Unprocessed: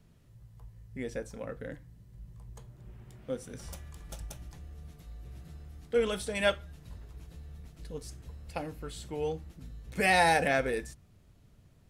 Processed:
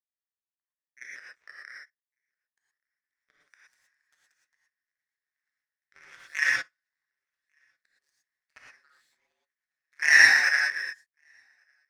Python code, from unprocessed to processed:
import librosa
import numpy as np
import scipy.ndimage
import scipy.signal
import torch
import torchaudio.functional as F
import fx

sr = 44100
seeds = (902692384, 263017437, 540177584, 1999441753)

p1 = scipy.signal.sosfilt(scipy.signal.butter(2, 6200.0, 'lowpass', fs=sr, output='sos'), x)
p2 = fx.peak_eq(p1, sr, hz=3000.0, db=-11.5, octaves=0.43)
p3 = fx.over_compress(p2, sr, threshold_db=-34.0, ratio=-0.5)
p4 = p2 + (p3 * librosa.db_to_amplitude(-0.5))
p5 = fx.highpass_res(p4, sr, hz=1800.0, q=9.3)
p6 = fx.echo_feedback(p5, sr, ms=1148, feedback_pct=48, wet_db=-21.5)
p7 = p6 * np.sin(2.0 * np.pi * 74.0 * np.arange(len(p6)) / sr)
p8 = fx.power_curve(p7, sr, exponent=2.0)
p9 = fx.rev_gated(p8, sr, seeds[0], gate_ms=140, shape='rising', drr_db=-4.5)
y = p9 * librosa.db_to_amplitude(1.5)